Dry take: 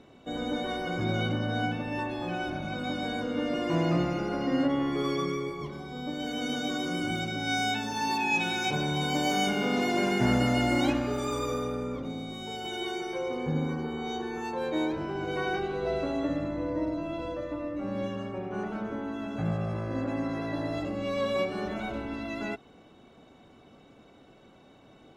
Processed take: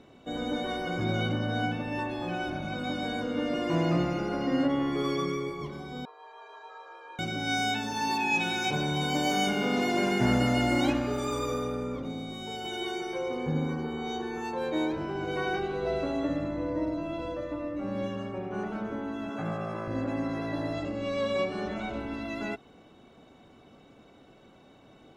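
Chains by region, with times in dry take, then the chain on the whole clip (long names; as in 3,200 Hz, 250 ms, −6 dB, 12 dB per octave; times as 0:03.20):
0:06.05–0:07.19: resonant band-pass 960 Hz, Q 4.5 + frequency shifter +170 Hz
0:19.29–0:19.88: high-pass filter 200 Hz + parametric band 1,200 Hz +5 dB 0.98 octaves + notch filter 4,300 Hz, Q 8.1
0:20.73–0:22.00: low-pass filter 8,900 Hz 24 dB per octave + hum removal 48.58 Hz, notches 38
whole clip: no processing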